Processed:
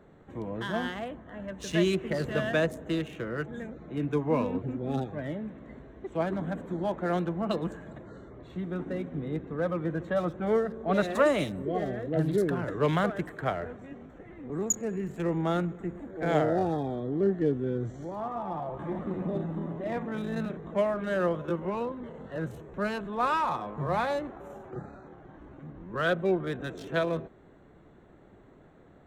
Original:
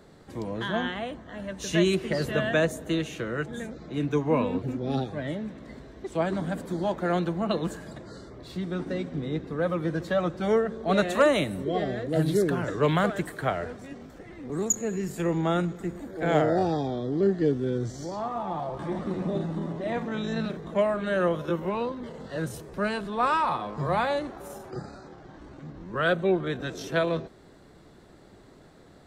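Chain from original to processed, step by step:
adaptive Wiener filter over 9 samples
0:10.10–0:12.38: multiband delay without the direct sound lows, highs 50 ms, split 3,400 Hz
level −2.5 dB

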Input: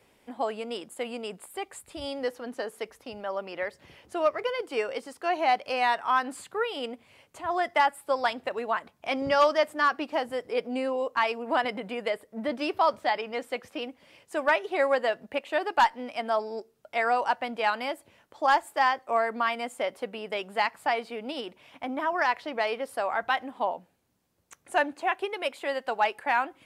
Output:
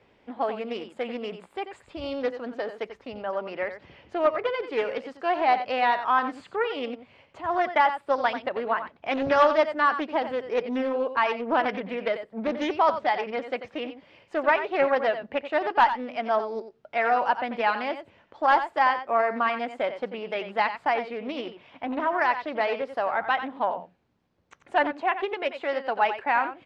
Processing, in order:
high-frequency loss of the air 200 metres
single-tap delay 90 ms −10.5 dB
highs frequency-modulated by the lows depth 0.27 ms
level +3 dB

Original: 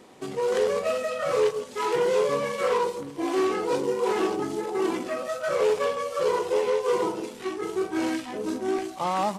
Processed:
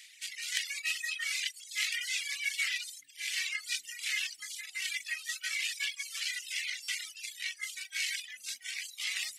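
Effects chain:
reverb reduction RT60 0.85 s
elliptic high-pass filter 2,000 Hz, stop band 50 dB
reverb reduction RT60 0.76 s
reversed playback
upward compression, threshold −56 dBFS
reversed playback
gain into a clipping stage and back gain 26.5 dB
buffer that repeats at 0:06.83, samples 256, times 8
level +8.5 dB

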